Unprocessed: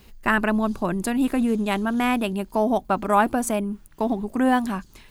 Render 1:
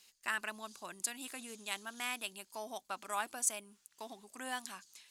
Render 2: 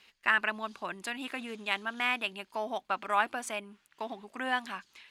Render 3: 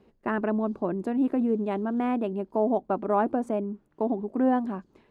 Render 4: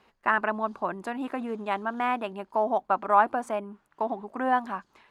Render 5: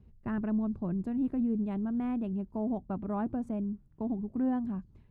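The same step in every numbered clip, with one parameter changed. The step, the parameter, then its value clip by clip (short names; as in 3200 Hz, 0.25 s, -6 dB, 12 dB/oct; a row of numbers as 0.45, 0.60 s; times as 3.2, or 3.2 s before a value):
band-pass, frequency: 7000, 2600, 400, 1000, 100 Hz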